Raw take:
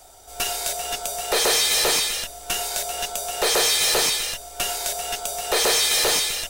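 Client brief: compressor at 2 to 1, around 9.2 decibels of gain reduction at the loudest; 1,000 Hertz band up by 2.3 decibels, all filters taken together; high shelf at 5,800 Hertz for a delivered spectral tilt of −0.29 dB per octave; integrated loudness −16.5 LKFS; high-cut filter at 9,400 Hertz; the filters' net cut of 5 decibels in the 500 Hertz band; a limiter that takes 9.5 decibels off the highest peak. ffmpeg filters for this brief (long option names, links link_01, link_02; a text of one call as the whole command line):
ffmpeg -i in.wav -af "lowpass=9400,equalizer=frequency=500:width_type=o:gain=-9,equalizer=frequency=1000:width_type=o:gain=7,highshelf=frequency=5800:gain=6,acompressor=threshold=-33dB:ratio=2,volume=16dB,alimiter=limit=-10dB:level=0:latency=1" out.wav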